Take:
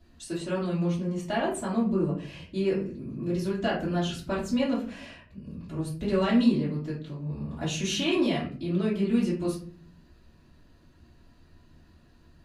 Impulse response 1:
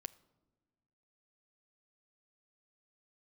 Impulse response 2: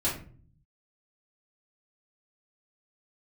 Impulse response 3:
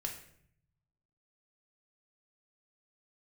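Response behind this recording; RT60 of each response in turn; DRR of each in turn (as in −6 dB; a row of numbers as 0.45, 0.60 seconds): 2; non-exponential decay, 0.45 s, 0.65 s; 12.5, −10.0, 1.0 decibels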